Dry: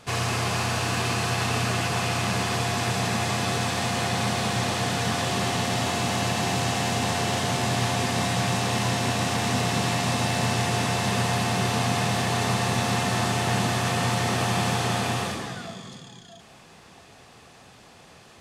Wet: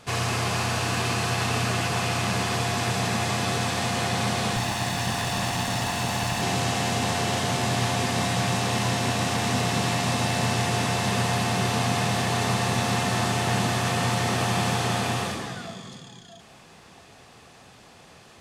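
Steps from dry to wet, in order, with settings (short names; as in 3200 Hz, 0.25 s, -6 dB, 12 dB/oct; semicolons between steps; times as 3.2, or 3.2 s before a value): 4.56–6.42 minimum comb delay 1.1 ms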